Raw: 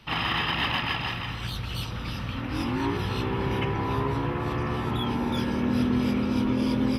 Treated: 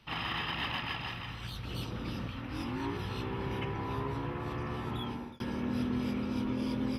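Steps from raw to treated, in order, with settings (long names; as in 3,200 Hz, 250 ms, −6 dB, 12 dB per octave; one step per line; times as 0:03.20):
0:01.65–0:02.28: parametric band 330 Hz +10 dB 1.9 octaves
0:04.91–0:05.40: fade out equal-power
level −8.5 dB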